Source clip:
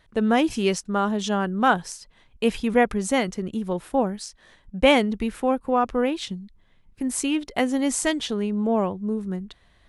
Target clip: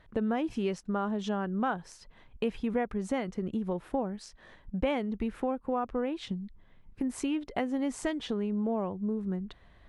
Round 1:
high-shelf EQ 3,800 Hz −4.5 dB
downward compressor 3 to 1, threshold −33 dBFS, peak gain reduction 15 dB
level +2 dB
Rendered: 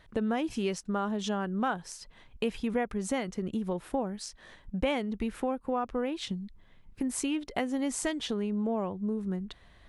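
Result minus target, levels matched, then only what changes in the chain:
8,000 Hz band +8.5 dB
change: high-shelf EQ 3,800 Hz −16.5 dB

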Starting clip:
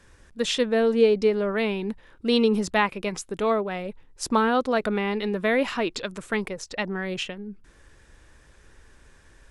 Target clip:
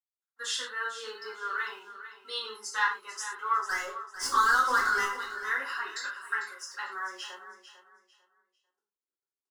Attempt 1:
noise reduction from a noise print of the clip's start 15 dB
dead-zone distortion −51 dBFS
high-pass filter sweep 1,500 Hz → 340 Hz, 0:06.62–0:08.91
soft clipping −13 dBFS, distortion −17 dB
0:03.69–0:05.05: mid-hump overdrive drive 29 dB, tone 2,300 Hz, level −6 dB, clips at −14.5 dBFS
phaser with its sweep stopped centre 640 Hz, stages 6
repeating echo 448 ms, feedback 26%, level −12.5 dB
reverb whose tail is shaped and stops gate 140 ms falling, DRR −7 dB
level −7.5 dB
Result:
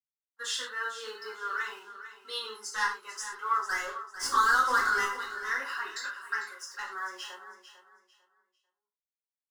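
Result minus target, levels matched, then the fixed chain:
soft clipping: distortion +16 dB; dead-zone distortion: distortion +7 dB
noise reduction from a noise print of the clip's start 15 dB
dead-zone distortion −59 dBFS
high-pass filter sweep 1,500 Hz → 340 Hz, 0:06.62–0:08.91
soft clipping −2 dBFS, distortion −33 dB
0:03.69–0:05.05: mid-hump overdrive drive 29 dB, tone 2,300 Hz, level −6 dB, clips at −14.5 dBFS
phaser with its sweep stopped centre 640 Hz, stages 6
repeating echo 448 ms, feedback 26%, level −12.5 dB
reverb whose tail is shaped and stops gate 140 ms falling, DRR −7 dB
level −7.5 dB

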